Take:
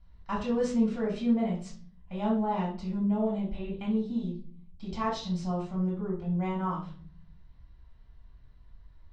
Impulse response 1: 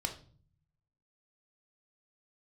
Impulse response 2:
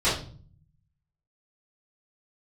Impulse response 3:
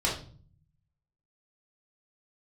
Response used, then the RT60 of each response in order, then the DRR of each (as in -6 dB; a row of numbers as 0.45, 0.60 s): 3; 0.45, 0.45, 0.45 s; 3.0, -14.5, -5.5 dB